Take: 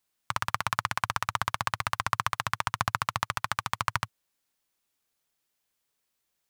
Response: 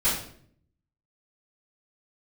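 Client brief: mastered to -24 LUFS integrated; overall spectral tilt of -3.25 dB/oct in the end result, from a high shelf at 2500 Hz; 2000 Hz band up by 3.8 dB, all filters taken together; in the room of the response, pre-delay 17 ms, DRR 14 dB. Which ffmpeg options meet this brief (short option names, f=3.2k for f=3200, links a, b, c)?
-filter_complex "[0:a]equalizer=f=2k:t=o:g=8.5,highshelf=f=2.5k:g=-8,asplit=2[a][b];[1:a]atrim=start_sample=2205,adelay=17[c];[b][c]afir=irnorm=-1:irlink=0,volume=-26dB[d];[a][d]amix=inputs=2:normalize=0,volume=5dB"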